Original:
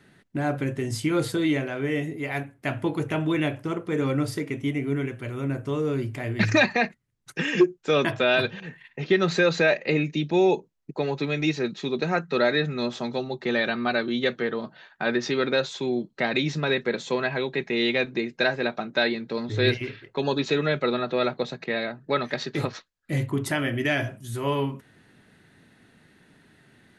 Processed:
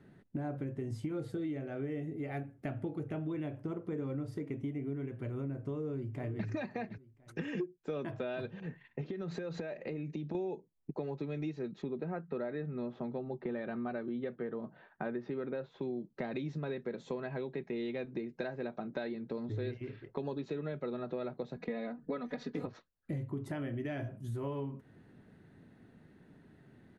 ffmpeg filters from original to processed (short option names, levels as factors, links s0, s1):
-filter_complex "[0:a]asettb=1/sr,asplit=3[s0][s1][s2];[s0]atrim=end=1.134[s3];[s1]atrim=start=1.13:end=3.27,asetpts=PTS-STARTPTS,afade=t=in:d=0.004:c=qsin,afade=t=out:st=2.136:d=0.004:c=qsin,asuperstop=centerf=1000:order=4:qfactor=7.4[s4];[s2]atrim=start=3.266[s5];[s3][s4]acrossfade=d=0.004:c1=hsin:c2=qsin[s6];[s6][s5]acrossfade=d=0.004:c1=qsin:c2=hsin,asplit=2[s7][s8];[s8]afade=t=in:st=5.68:d=0.01,afade=t=out:st=6.46:d=0.01,aecho=0:1:510|1020:0.16788|0.0335761[s9];[s7][s9]amix=inputs=2:normalize=0,asettb=1/sr,asplit=3[s10][s11][s12];[s10]atrim=end=9.014[s13];[s11]atrim=start=9.01:end=10.35,asetpts=PTS-STARTPTS,afade=t=in:d=0.004:c=qsin,afade=t=out:st=1.336:d=0.004:c=qsin,acompressor=threshold=0.0316:ratio=6:attack=3.2:release=140:knee=1:detection=peak[s14];[s12]atrim=start=10.346[s15];[s13][s14]acrossfade=d=0.004:c1=hsin:c2=qsin[s16];[s16][s15]acrossfade=d=0.004:c1=qsin:c2=hsin,asettb=1/sr,asplit=3[s17][s18][s19];[s17]atrim=end=11.824[s20];[s18]atrim=start=11.82:end=15.82,asetpts=PTS-STARTPTS,afade=t=in:d=0.004:c=qsin,afade=t=out:st=3.996:d=0.004:c=qsin,lowpass=2500[s21];[s19]atrim=start=15.816[s22];[s20][s21]acrossfade=d=0.004:c1=hsin:c2=qsin[s23];[s23][s22]acrossfade=d=0.004:c1=qsin:c2=hsin,asettb=1/sr,asplit=3[s24][s25][s26];[s24]atrim=end=21.564[s27];[s25]atrim=start=21.56:end=22.66,asetpts=PTS-STARTPTS,afade=t=in:d=0.004:c=qsin,afade=t=out:st=1.096:d=0.004:c=qsin,aecho=1:1:4.1:0.97,atrim=end_sample=48510[s28];[s26]atrim=start=22.656[s29];[s27][s28]acrossfade=d=0.004:c1=hsin:c2=qsin[s30];[s30][s29]acrossfade=d=0.004:c1=qsin:c2=hsin,tiltshelf=f=1300:g=8.5,acompressor=threshold=0.0447:ratio=6,volume=0.376"